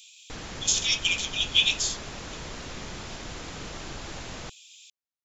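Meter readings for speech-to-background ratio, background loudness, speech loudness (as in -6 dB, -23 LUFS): 15.0 dB, -39.0 LUFS, -24.0 LUFS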